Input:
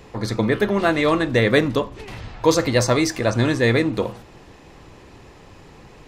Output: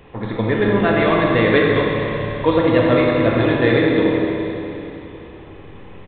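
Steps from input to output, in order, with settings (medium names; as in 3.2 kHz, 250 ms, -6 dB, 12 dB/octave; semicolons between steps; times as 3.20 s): bucket-brigade echo 84 ms, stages 1024, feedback 74%, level -9 dB; Schroeder reverb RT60 3.2 s, combs from 28 ms, DRR -1.5 dB; resampled via 8 kHz; trim -1 dB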